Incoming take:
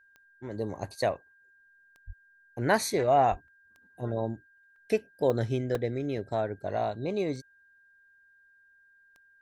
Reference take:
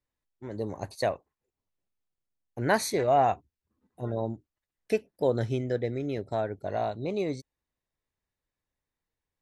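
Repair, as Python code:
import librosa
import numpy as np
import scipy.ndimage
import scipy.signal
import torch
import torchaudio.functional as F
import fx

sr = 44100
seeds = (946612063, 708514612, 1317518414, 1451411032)

y = fx.fix_declick_ar(x, sr, threshold=10.0)
y = fx.notch(y, sr, hz=1600.0, q=30.0)
y = fx.highpass(y, sr, hz=140.0, slope=24, at=(2.06, 2.18), fade=0.02)
y = fx.highpass(y, sr, hz=140.0, slope=24, at=(3.3, 3.42), fade=0.02)
y = fx.fix_interpolate(y, sr, at_s=(3.48, 4.76, 5.3, 5.75), length_ms=2.3)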